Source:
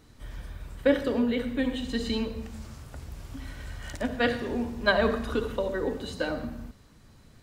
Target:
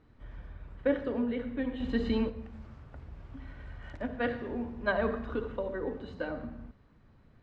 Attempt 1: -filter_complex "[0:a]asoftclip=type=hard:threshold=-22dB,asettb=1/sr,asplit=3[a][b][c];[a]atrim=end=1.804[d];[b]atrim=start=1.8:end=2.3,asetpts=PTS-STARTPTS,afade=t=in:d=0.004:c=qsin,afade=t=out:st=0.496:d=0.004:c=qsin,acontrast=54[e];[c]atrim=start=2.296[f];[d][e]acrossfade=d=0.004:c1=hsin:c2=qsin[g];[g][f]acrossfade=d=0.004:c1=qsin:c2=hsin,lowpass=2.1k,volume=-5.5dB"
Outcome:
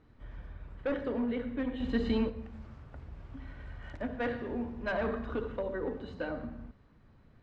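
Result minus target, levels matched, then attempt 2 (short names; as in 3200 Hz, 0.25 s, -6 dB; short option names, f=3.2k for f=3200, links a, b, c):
hard clip: distortion +35 dB
-filter_complex "[0:a]asoftclip=type=hard:threshold=-10.5dB,asettb=1/sr,asplit=3[a][b][c];[a]atrim=end=1.804[d];[b]atrim=start=1.8:end=2.3,asetpts=PTS-STARTPTS,afade=t=in:d=0.004:c=qsin,afade=t=out:st=0.496:d=0.004:c=qsin,acontrast=54[e];[c]atrim=start=2.296[f];[d][e]acrossfade=d=0.004:c1=hsin:c2=qsin[g];[g][f]acrossfade=d=0.004:c1=qsin:c2=hsin,lowpass=2.1k,volume=-5.5dB"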